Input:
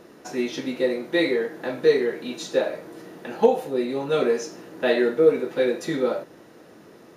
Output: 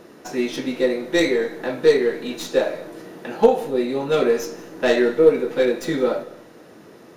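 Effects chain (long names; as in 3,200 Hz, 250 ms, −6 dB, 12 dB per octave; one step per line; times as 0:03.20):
stylus tracing distortion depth 0.064 ms
on a send: convolution reverb RT60 0.60 s, pre-delay 154 ms, DRR 18.5 dB
on the sum: level +3 dB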